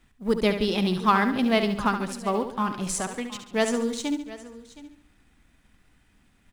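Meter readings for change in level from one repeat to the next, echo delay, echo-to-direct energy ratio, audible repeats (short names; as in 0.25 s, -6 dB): no steady repeat, 70 ms, -7.5 dB, 7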